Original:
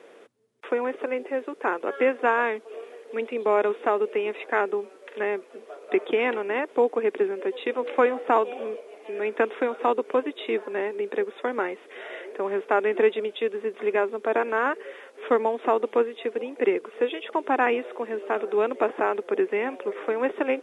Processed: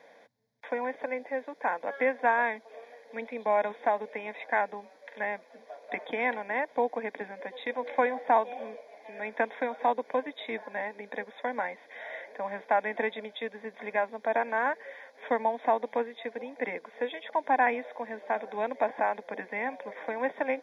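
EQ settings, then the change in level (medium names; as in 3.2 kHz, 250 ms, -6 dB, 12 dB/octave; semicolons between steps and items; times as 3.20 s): static phaser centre 1.9 kHz, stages 8; 0.0 dB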